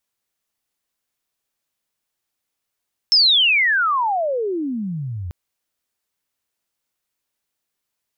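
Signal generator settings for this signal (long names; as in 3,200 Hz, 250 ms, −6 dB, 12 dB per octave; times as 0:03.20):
glide logarithmic 5,400 Hz → 82 Hz −10 dBFS → −25.5 dBFS 2.19 s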